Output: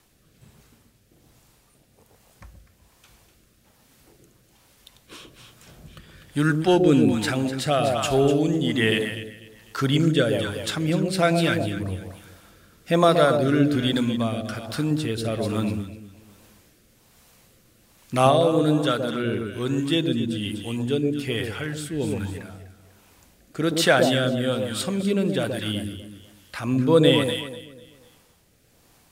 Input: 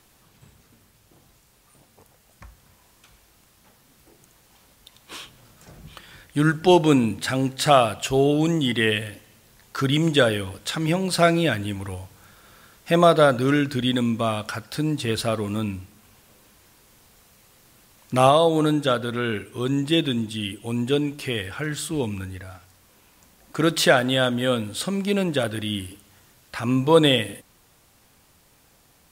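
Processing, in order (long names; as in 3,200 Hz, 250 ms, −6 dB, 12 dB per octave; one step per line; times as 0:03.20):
delay that swaps between a low-pass and a high-pass 124 ms, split 810 Hz, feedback 55%, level −3.5 dB
rotating-speaker cabinet horn 1.2 Hz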